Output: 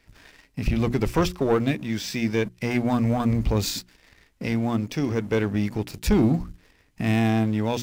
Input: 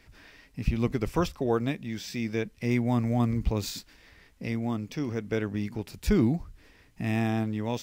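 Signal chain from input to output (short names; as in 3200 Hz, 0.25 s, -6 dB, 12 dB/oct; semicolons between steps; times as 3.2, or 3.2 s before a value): sample leveller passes 2; notches 60/120/180/240/300/360 Hz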